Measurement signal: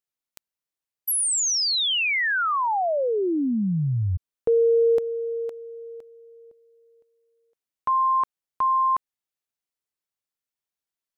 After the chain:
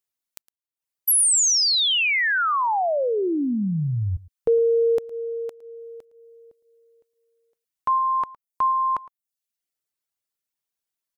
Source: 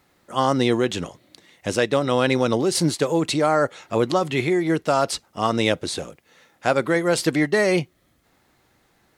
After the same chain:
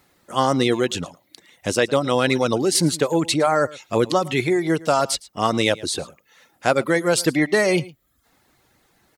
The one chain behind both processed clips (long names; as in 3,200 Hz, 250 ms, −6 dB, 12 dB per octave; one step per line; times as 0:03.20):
reverb reduction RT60 0.59 s
high-shelf EQ 5,800 Hz +5 dB
single-tap delay 111 ms −20.5 dB
level +1.5 dB